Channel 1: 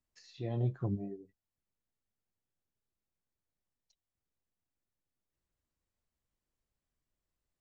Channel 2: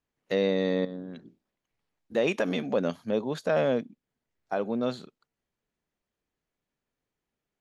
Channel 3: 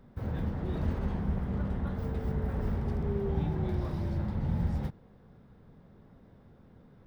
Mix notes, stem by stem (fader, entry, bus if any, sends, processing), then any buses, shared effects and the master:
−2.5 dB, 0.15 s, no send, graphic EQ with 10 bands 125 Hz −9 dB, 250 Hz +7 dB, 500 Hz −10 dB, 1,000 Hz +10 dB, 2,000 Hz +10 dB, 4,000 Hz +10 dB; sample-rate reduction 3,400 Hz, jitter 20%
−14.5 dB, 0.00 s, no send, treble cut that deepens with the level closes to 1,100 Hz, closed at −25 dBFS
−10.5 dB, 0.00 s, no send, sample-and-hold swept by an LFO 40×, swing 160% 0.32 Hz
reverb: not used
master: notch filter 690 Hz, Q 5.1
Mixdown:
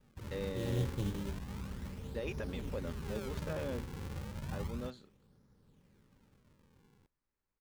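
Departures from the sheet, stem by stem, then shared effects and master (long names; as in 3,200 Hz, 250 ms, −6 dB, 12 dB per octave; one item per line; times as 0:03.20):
stem 1: missing graphic EQ with 10 bands 125 Hz −9 dB, 250 Hz +7 dB, 500 Hz −10 dB, 1,000 Hz +10 dB, 2,000 Hz +10 dB, 4,000 Hz +10 dB
stem 2: missing treble cut that deepens with the level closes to 1,100 Hz, closed at −25 dBFS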